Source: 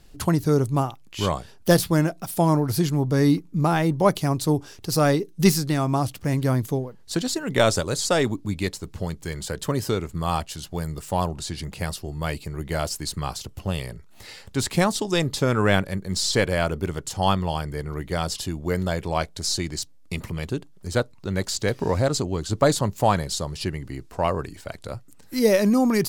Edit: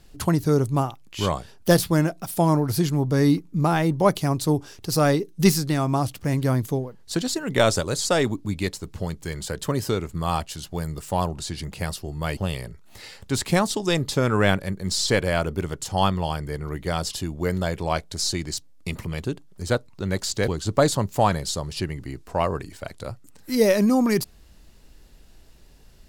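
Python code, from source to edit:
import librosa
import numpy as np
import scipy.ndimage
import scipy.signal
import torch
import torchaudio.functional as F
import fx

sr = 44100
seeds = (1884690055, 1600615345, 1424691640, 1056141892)

y = fx.edit(x, sr, fx.cut(start_s=12.37, length_s=1.25),
    fx.cut(start_s=21.73, length_s=0.59), tone=tone)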